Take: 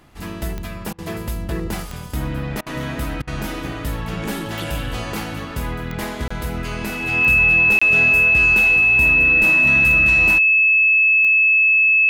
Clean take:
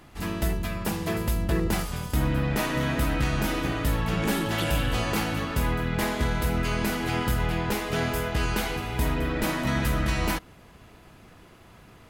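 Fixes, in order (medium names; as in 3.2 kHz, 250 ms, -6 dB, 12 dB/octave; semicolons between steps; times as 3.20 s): de-click; band-stop 2.6 kHz, Q 30; interpolate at 6.28/7.79 s, 25 ms; interpolate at 0.93/2.61/3.22 s, 53 ms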